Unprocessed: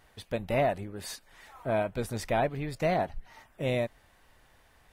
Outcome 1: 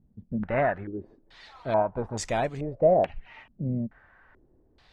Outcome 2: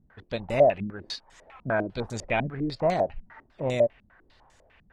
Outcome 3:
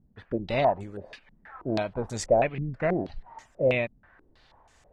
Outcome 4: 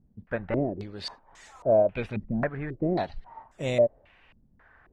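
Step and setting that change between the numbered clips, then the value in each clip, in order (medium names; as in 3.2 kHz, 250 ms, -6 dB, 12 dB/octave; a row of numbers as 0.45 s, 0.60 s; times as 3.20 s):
step-sequenced low-pass, rate: 2.3 Hz, 10 Hz, 6.2 Hz, 3.7 Hz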